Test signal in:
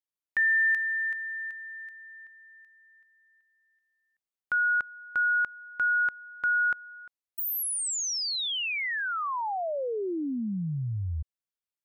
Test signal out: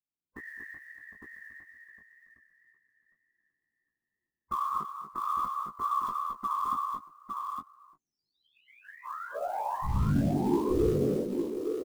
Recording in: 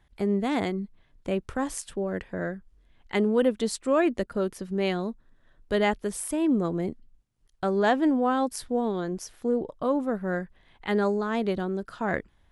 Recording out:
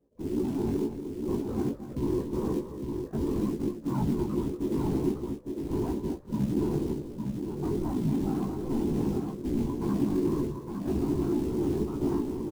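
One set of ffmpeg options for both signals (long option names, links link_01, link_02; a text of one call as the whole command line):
ffmpeg -i in.wav -filter_complex "[0:a]afftfilt=real='real(if(between(b,1,1008),(2*floor((b-1)/24)+1)*24-b,b),0)':imag='imag(if(between(b,1,1008),(2*floor((b-1)/24)+1)*24-b,b),0)*if(between(b,1,1008),-1,1)':win_size=2048:overlap=0.75,lowpass=frequency=1000:width=0.5412,lowpass=frequency=1000:width=1.3066,lowshelf=frequency=400:width_type=q:width=3:gain=8,acompressor=threshold=-26dB:ratio=3:attack=13:release=21:knee=6:detection=peak,alimiter=limit=-24dB:level=0:latency=1:release=10,dynaudnorm=framelen=190:gausssize=3:maxgain=11dB,afftfilt=real='hypot(re,im)*cos(2*PI*random(0))':imag='hypot(re,im)*sin(2*PI*random(1))':win_size=512:overlap=0.75,asoftclip=type=tanh:threshold=-15dB,acrusher=bits=6:mode=log:mix=0:aa=0.000001,flanger=delay=15.5:depth=6.7:speed=2,asplit=2[link_01][link_02];[link_02]adelay=14,volume=-8.5dB[link_03];[link_01][link_03]amix=inputs=2:normalize=0,aecho=1:1:210|238|858:0.1|0.335|0.562,volume=-1.5dB" out.wav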